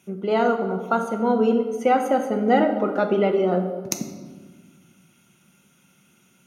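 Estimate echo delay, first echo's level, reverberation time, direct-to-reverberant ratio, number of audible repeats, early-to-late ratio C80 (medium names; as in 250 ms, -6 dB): no echo, no echo, 1.5 s, 4.5 dB, no echo, 9.5 dB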